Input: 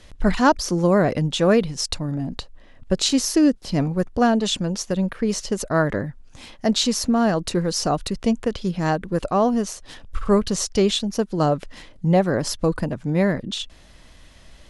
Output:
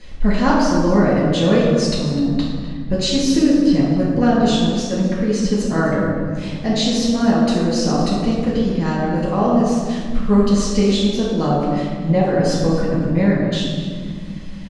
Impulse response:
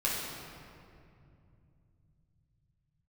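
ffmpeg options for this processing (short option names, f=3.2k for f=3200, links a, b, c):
-filter_complex "[0:a]lowpass=6.5k,asplit=2[a][b];[b]acompressor=threshold=-31dB:ratio=6,volume=3dB[c];[a][c]amix=inputs=2:normalize=0,asplit=2[d][e];[e]adelay=250.7,volume=-12dB,highshelf=f=4k:g=-5.64[f];[d][f]amix=inputs=2:normalize=0[g];[1:a]atrim=start_sample=2205,asetrate=79380,aresample=44100[h];[g][h]afir=irnorm=-1:irlink=0,volume=-3.5dB"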